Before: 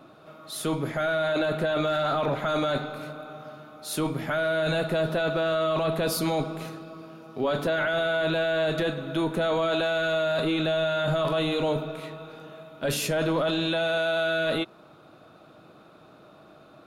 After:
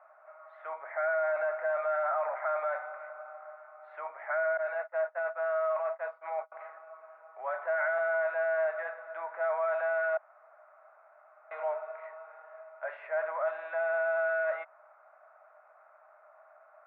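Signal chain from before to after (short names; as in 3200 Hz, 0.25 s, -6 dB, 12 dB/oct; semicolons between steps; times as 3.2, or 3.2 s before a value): 4.57–6.52 gate -25 dBFS, range -33 dB; 10.17–11.51 room tone; Chebyshev band-pass 610–2100 Hz, order 4; gain -3 dB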